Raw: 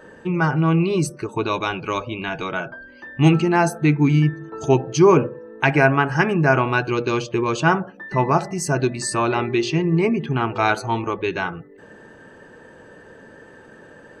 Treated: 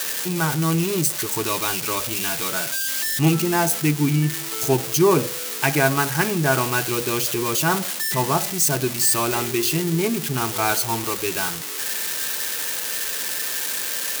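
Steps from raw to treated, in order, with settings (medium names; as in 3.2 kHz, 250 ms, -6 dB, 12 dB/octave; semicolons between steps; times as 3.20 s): zero-crossing glitches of -9.5 dBFS; 7.07–7.93 s: transient shaper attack -3 dB, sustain +2 dB; trim -3.5 dB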